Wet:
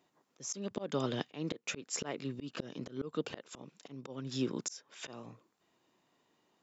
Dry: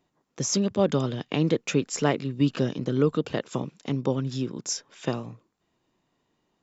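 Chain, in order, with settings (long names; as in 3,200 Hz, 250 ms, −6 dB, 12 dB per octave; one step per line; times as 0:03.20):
high-pass filter 310 Hz 6 dB per octave
volume swells 438 ms
level +1.5 dB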